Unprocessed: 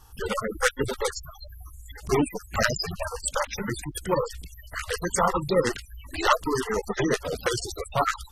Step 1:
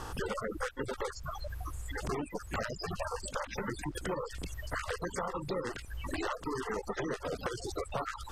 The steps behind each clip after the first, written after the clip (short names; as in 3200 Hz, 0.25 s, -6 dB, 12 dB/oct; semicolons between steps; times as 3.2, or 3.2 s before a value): per-bin compression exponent 0.6; compressor 10:1, threshold -30 dBFS, peak gain reduction 16.5 dB; high shelf 4300 Hz -9 dB; gain -2 dB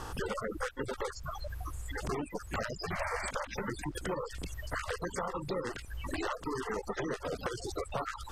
painted sound noise, 2.9–3.31, 560–2400 Hz -39 dBFS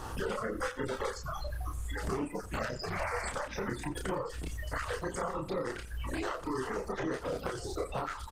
doubler 31 ms -3 dB; feedback echo 87 ms, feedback 24%, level -16 dB; Opus 20 kbps 48000 Hz